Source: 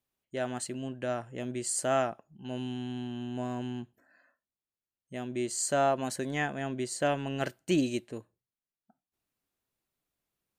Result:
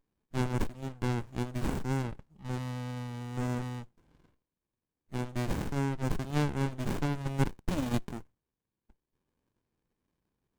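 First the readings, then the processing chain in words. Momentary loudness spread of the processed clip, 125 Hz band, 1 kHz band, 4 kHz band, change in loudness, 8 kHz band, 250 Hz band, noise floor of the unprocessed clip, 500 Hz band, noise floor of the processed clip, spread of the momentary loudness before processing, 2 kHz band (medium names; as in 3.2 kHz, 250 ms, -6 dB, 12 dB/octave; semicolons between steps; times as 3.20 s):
8 LU, +7.5 dB, -5.0 dB, -4.5 dB, -2.0 dB, -13.0 dB, -0.5 dB, under -85 dBFS, -7.0 dB, under -85 dBFS, 13 LU, -4.0 dB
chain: graphic EQ 125/250/500/1000/2000/8000 Hz -8/-12/-9/+10/-8/+12 dB; compression 16:1, threshold -32 dBFS, peak gain reduction 15 dB; sliding maximum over 65 samples; trim +7.5 dB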